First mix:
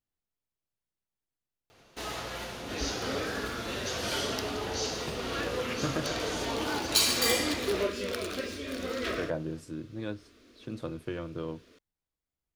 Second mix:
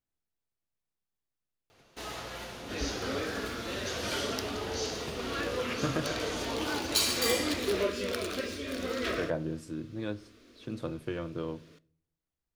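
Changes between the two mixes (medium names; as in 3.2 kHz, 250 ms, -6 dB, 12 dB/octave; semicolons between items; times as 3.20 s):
first sound -3.0 dB; reverb: on, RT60 0.55 s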